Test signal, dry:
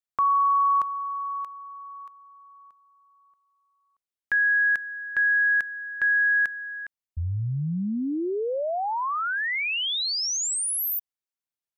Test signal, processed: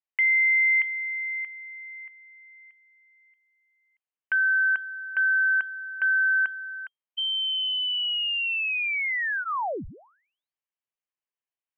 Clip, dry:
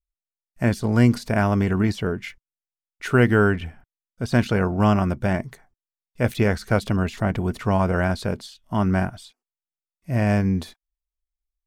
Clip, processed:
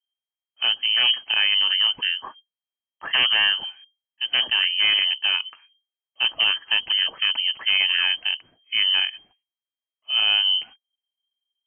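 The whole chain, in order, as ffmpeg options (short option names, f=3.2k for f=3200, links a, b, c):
-af "aeval=exprs='0.237*(abs(mod(val(0)/0.237+3,4)-2)-1)':c=same,bandreject=f=1.8k:w=13,lowpass=f=2.7k:t=q:w=0.5098,lowpass=f=2.7k:t=q:w=0.6013,lowpass=f=2.7k:t=q:w=0.9,lowpass=f=2.7k:t=q:w=2.563,afreqshift=-3200"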